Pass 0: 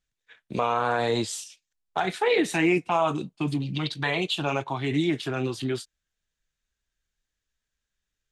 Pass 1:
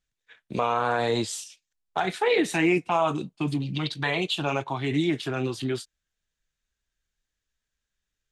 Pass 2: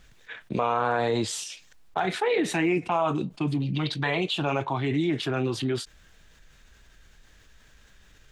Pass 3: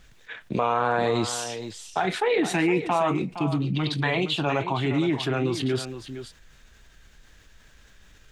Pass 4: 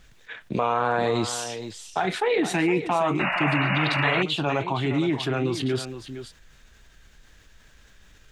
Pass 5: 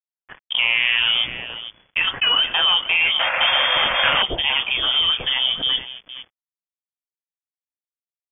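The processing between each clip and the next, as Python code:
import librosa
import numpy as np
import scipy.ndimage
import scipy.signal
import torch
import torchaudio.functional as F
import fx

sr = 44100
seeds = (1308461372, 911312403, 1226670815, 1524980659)

y1 = x
y2 = fx.high_shelf(y1, sr, hz=4300.0, db=-10.5)
y2 = fx.env_flatten(y2, sr, amount_pct=50)
y2 = y2 * librosa.db_to_amplitude(-2.5)
y3 = y2 + 10.0 ** (-11.0 / 20.0) * np.pad(y2, (int(464 * sr / 1000.0), 0))[:len(y2)]
y3 = y3 * librosa.db_to_amplitude(1.5)
y4 = fx.spec_paint(y3, sr, seeds[0], shape='noise', start_s=3.19, length_s=1.04, low_hz=540.0, high_hz=2900.0, level_db=-26.0)
y5 = np.sign(y4) * np.maximum(np.abs(y4) - 10.0 ** (-38.5 / 20.0), 0.0)
y5 = fx.freq_invert(y5, sr, carrier_hz=3400)
y5 = y5 * librosa.db_to_amplitude(5.5)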